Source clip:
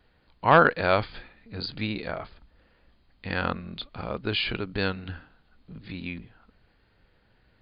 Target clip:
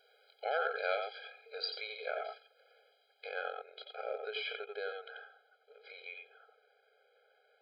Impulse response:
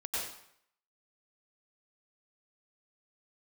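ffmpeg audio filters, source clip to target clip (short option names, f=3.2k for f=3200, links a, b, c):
-filter_complex "[0:a]equalizer=f=250:t=o:w=1:g=8.5[a];[1:a]atrim=start_sample=2205,atrim=end_sample=3969[b];[a][b]afir=irnorm=-1:irlink=0,acompressor=threshold=-35dB:ratio=4,asetnsamples=n=441:p=0,asendcmd='0.99 highshelf g 5;3.29 highshelf g -5',highshelf=f=3.2k:g=10,afftfilt=real='re*eq(mod(floor(b*sr/1024/420),2),1)':imag='im*eq(mod(floor(b*sr/1024/420),2),1)':win_size=1024:overlap=0.75,volume=4dB"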